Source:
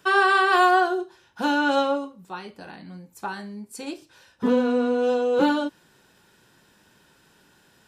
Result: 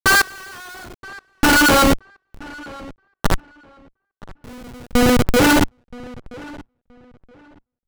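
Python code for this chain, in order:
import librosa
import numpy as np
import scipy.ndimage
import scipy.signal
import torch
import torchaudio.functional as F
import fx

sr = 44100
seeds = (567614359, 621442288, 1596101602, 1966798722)

y = fx.band_shelf(x, sr, hz=2800.0, db=14.5, octaves=2.6)
y = fx.env_lowpass(y, sr, base_hz=2700.0, full_db=-6.5)
y = fx.schmitt(y, sr, flips_db=-15.5)
y = fx.step_gate(y, sr, bpm=70, pattern='x....xxxx', floor_db=-24.0, edge_ms=4.5)
y = np.where(np.abs(y) >= 10.0 ** (-45.5 / 20.0), y, 0.0)
y = fx.echo_filtered(y, sr, ms=974, feedback_pct=23, hz=2800.0, wet_db=-21)
y = y * librosa.db_to_amplitude(5.0)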